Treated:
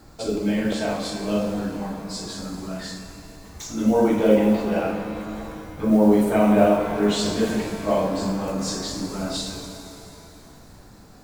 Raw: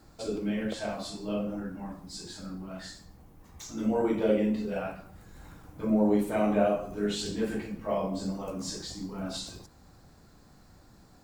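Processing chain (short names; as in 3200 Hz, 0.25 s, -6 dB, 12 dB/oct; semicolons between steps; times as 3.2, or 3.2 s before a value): modulation noise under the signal 33 dB; shimmer reverb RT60 2.8 s, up +7 st, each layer -8 dB, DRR 5.5 dB; gain +7.5 dB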